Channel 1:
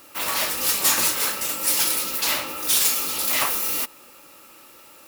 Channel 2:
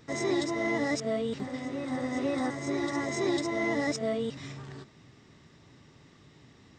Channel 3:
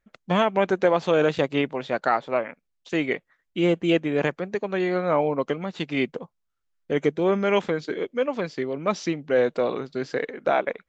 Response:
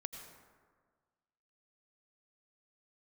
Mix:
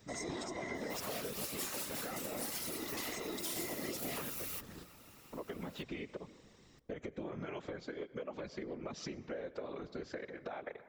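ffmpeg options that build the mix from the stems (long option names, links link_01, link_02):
-filter_complex "[0:a]adelay=750,volume=-7dB,asplit=2[link_01][link_02];[link_02]volume=-21dB[link_03];[1:a]aemphasis=mode=production:type=50kf,volume=-3dB,asplit=2[link_04][link_05];[link_05]volume=-11dB[link_06];[2:a]alimiter=limit=-16dB:level=0:latency=1:release=57,acompressor=threshold=-40dB:ratio=2.5,volume=2.5dB,asplit=3[link_07][link_08][link_09];[link_07]atrim=end=4.48,asetpts=PTS-STARTPTS,afade=type=out:start_time=4.476:duration=0.004:curve=hsin[link_10];[link_08]atrim=start=4.48:end=5.33,asetpts=PTS-STARTPTS,volume=0[link_11];[link_09]atrim=start=5.33,asetpts=PTS-STARTPTS,afade=type=in:duration=0.004:curve=hsin[link_12];[link_10][link_11][link_12]concat=n=3:v=0:a=1,asplit=2[link_13][link_14];[link_14]volume=-7.5dB[link_15];[3:a]atrim=start_sample=2205[link_16];[link_03][link_06][link_15]amix=inputs=3:normalize=0[link_17];[link_17][link_16]afir=irnorm=-1:irlink=0[link_18];[link_01][link_04][link_13][link_18]amix=inputs=4:normalize=0,afftfilt=real='hypot(re,im)*cos(2*PI*random(0))':imag='hypot(re,im)*sin(2*PI*random(1))':win_size=512:overlap=0.75,acompressor=threshold=-40dB:ratio=3"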